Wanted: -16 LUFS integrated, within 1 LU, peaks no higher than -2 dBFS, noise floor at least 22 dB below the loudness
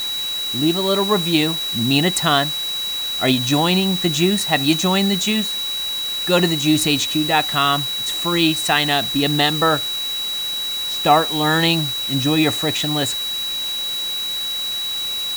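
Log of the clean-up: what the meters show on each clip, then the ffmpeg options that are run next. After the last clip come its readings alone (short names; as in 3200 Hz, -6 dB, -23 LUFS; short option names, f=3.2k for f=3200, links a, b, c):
steady tone 3900 Hz; tone level -22 dBFS; noise floor -24 dBFS; noise floor target -40 dBFS; loudness -18.0 LUFS; peak -1.5 dBFS; loudness target -16.0 LUFS
-> -af "bandreject=f=3.9k:w=30"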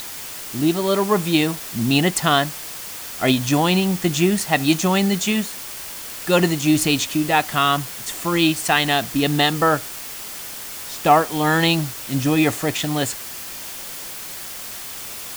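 steady tone none; noise floor -33 dBFS; noise floor target -43 dBFS
-> -af "afftdn=nr=10:nf=-33"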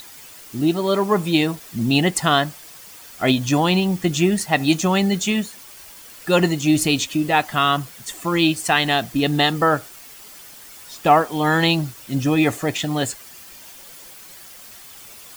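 noise floor -42 dBFS; loudness -19.5 LUFS; peak -2.5 dBFS; loudness target -16.0 LUFS
-> -af "volume=3.5dB,alimiter=limit=-2dB:level=0:latency=1"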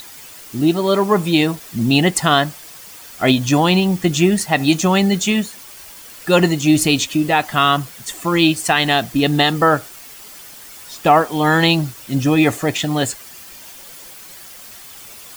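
loudness -16.5 LUFS; peak -2.0 dBFS; noise floor -39 dBFS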